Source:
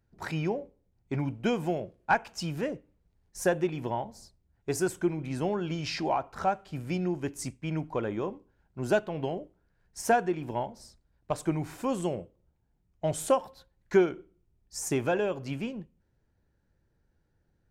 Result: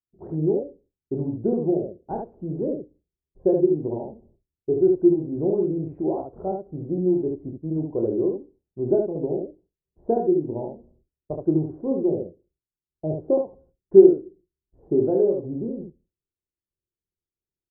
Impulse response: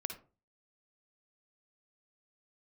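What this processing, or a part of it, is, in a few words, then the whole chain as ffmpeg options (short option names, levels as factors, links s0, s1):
under water: -af "agate=range=0.0224:threshold=0.00224:ratio=3:detection=peak,lowpass=f=620:w=0.5412,lowpass=f=620:w=1.3066,equalizer=f=370:t=o:w=0.6:g=10.5,highshelf=f=3900:g=-8.5,aecho=1:1:26|72:0.562|0.668"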